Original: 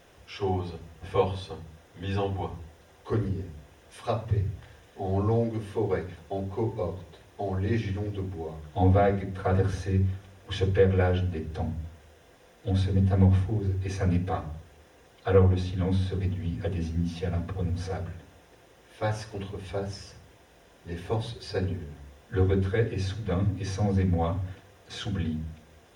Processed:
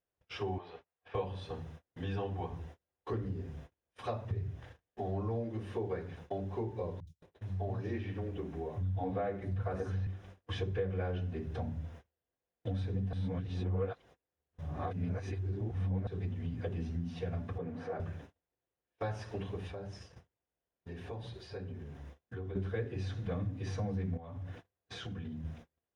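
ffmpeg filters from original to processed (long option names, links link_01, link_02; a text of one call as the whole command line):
ffmpeg -i in.wav -filter_complex "[0:a]asettb=1/sr,asplit=3[link_01][link_02][link_03];[link_01]atrim=end=0.584[link_04];[link_02]atrim=start=0.58:end=1.15,asetpts=PTS-STARTPTS,afade=type=in:duration=0.004:curve=qsin,afade=type=out:start_time=0.566:duration=0.004:curve=qsin,acrossover=split=450 4600:gain=0.0891 1 0.0891[link_05][link_06][link_07];[link_05][link_06][link_07]amix=inputs=3:normalize=0[link_08];[link_03]atrim=start=1.146[link_09];[link_04][link_08]acrossfade=duration=0.004:curve1=hsin:curve2=qsin[link_10];[link_10][link_09]acrossfade=duration=0.004:curve1=qsin:curve2=hsin,asettb=1/sr,asplit=3[link_11][link_12][link_13];[link_11]atrim=end=7.004[link_14];[link_12]atrim=start=7:end=10.07,asetpts=PTS-STARTPTS,afade=type=in:duration=0.004:curve=qsin,afade=type=out:start_time=3.066:duration=0.004:curve=qsin,acrossover=split=170|4400[link_15][link_16][link_17];[link_17]adelay=70[link_18];[link_16]adelay=210[link_19];[link_15][link_19][link_18]amix=inputs=3:normalize=0,atrim=end_sample=135387[link_20];[link_13]atrim=start=10.066[link_21];[link_14][link_20]acrossfade=duration=0.004:curve1=hsin:curve2=qsin[link_22];[link_22][link_21]acrossfade=duration=0.004:curve1=qsin:curve2=hsin,asettb=1/sr,asplit=3[link_23][link_24][link_25];[link_23]atrim=end=17.584[link_26];[link_24]atrim=start=17.58:end=18,asetpts=PTS-STARTPTS,afade=type=in:duration=0.004:curve=qsin,afade=type=out:start_time=0.416:duration=0.004:curve=qsin,acrossover=split=180 2200:gain=0.0631 1 0.178[link_27][link_28][link_29];[link_27][link_28][link_29]amix=inputs=3:normalize=0[link_30];[link_25]atrim=start=17.996[link_31];[link_26][link_30]acrossfade=duration=0.004:curve1=hsin:curve2=qsin[link_32];[link_32][link_31]acrossfade=duration=0.004:curve1=qsin:curve2=hsin,asplit=3[link_33][link_34][link_35];[link_33]afade=type=out:start_time=19.67:duration=0.02[link_36];[link_34]acompressor=threshold=-43dB:ratio=3:attack=3.2:release=140:knee=1:detection=peak,afade=type=in:start_time=19.67:duration=0.02,afade=type=out:start_time=22.55:duration=0.02[link_37];[link_35]afade=type=in:start_time=22.55:duration=0.02[link_38];[link_36][link_37][link_38]amix=inputs=3:normalize=0,asettb=1/sr,asplit=3[link_39][link_40][link_41];[link_39]atrim=end=24.174[link_42];[link_40]atrim=start=24.17:end=25.45,asetpts=PTS-STARTPTS,afade=type=in:duration=0.004:curve=qsin,afade=type=out:start_time=1.276:duration=0.004:curve=qsin,acompressor=threshold=-38dB:ratio=6:attack=3.2:release=140:knee=1:detection=peak[link_43];[link_41]atrim=start=25.446[link_44];[link_42][link_43]acrossfade=duration=0.004:curve1=hsin:curve2=qsin[link_45];[link_45][link_44]acrossfade=duration=0.004:curve1=qsin:curve2=hsin,asplit=3[link_46][link_47][link_48];[link_46]atrim=end=13.132[link_49];[link_47]atrim=start=13.128:end=16.072,asetpts=PTS-STARTPTS,areverse[link_50];[link_48]atrim=start=16.068[link_51];[link_49][link_50]acrossfade=duration=0.004:curve1=hsin:curve2=hsin[link_52];[link_52][link_51]acrossfade=duration=0.004:curve1=hsin:curve2=hsin,lowpass=frequency=2900:poles=1,agate=range=-36dB:threshold=-48dB:ratio=16:detection=peak,acompressor=threshold=-36dB:ratio=3" out.wav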